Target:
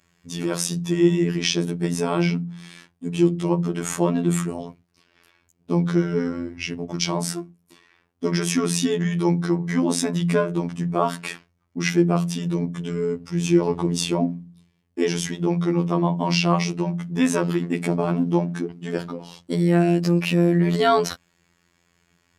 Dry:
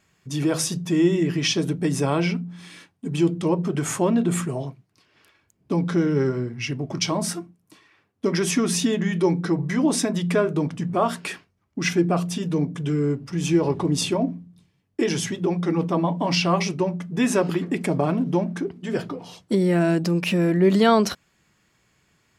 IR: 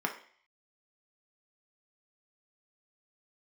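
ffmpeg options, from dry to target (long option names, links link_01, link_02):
-af "afftfilt=real='hypot(re,im)*cos(PI*b)':imag='0':win_size=2048:overlap=0.75,volume=3dB"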